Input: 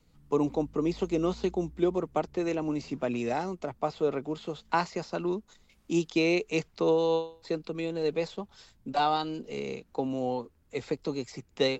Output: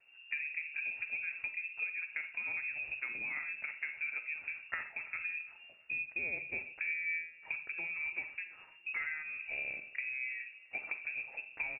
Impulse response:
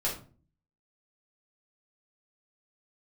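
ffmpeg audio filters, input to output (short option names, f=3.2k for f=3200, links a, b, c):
-filter_complex "[0:a]bandreject=f=60:t=h:w=6,bandreject=f=120:t=h:w=6,bandreject=f=180:t=h:w=6,bandreject=f=240:t=h:w=6,bandreject=f=300:t=h:w=6,acompressor=threshold=-37dB:ratio=6,asplit=2[a][b];[1:a]atrim=start_sample=2205,adelay=41[c];[b][c]afir=irnorm=-1:irlink=0,volume=-15dB[d];[a][d]amix=inputs=2:normalize=0,lowpass=f=2.4k:t=q:w=0.5098,lowpass=f=2.4k:t=q:w=0.6013,lowpass=f=2.4k:t=q:w=0.9,lowpass=f=2.4k:t=q:w=2.563,afreqshift=-2800,asplit=2[e][f];[f]adelay=336,lowpass=f=1.5k:p=1,volume=-19dB,asplit=2[g][h];[h]adelay=336,lowpass=f=1.5k:p=1,volume=0.46,asplit=2[i][j];[j]adelay=336,lowpass=f=1.5k:p=1,volume=0.46,asplit=2[k][l];[l]adelay=336,lowpass=f=1.5k:p=1,volume=0.46[m];[e][g][i][k][m]amix=inputs=5:normalize=0"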